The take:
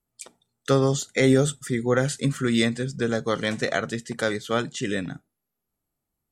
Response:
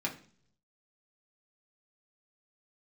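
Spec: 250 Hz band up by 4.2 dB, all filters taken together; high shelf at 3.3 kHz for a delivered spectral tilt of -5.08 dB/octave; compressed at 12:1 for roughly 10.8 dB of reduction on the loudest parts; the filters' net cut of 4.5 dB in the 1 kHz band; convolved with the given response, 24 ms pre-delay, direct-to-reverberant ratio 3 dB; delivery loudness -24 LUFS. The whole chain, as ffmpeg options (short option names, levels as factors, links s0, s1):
-filter_complex "[0:a]equalizer=f=250:t=o:g=5,equalizer=f=1000:t=o:g=-7.5,highshelf=f=3300:g=3.5,acompressor=threshold=0.0891:ratio=12,asplit=2[s0][s1];[1:a]atrim=start_sample=2205,adelay=24[s2];[s1][s2]afir=irnorm=-1:irlink=0,volume=0.422[s3];[s0][s3]amix=inputs=2:normalize=0,volume=1.12"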